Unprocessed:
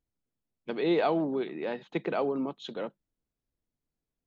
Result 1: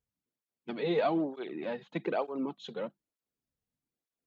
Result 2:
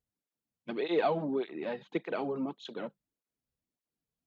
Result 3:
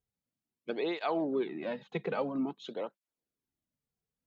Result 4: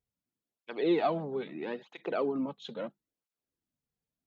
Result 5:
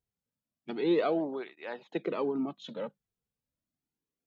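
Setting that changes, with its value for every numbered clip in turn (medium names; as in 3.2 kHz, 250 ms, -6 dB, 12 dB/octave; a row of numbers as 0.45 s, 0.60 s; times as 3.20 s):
cancelling through-zero flanger, nulls at: 1.1 Hz, 1.7 Hz, 0.5 Hz, 0.76 Hz, 0.32 Hz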